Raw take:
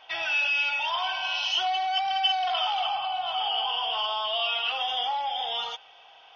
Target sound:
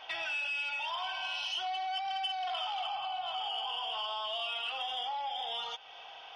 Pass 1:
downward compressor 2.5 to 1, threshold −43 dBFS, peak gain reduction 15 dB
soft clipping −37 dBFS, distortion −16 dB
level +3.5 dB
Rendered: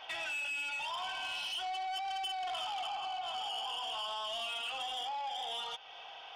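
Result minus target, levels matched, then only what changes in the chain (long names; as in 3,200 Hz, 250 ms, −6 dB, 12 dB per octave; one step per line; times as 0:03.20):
soft clipping: distortion +14 dB
change: soft clipping −27.5 dBFS, distortion −30 dB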